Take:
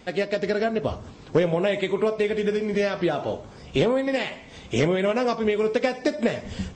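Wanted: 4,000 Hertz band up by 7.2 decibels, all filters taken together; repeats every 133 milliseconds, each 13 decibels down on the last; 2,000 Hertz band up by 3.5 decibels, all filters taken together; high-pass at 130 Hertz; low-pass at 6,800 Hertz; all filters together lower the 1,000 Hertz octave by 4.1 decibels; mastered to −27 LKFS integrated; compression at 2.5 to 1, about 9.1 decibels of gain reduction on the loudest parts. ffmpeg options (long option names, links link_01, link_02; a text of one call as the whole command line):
ffmpeg -i in.wav -af "highpass=130,lowpass=6800,equalizer=frequency=1000:width_type=o:gain=-7.5,equalizer=frequency=2000:width_type=o:gain=3.5,equalizer=frequency=4000:width_type=o:gain=9,acompressor=threshold=-31dB:ratio=2.5,aecho=1:1:133|266|399:0.224|0.0493|0.0108,volume=5dB" out.wav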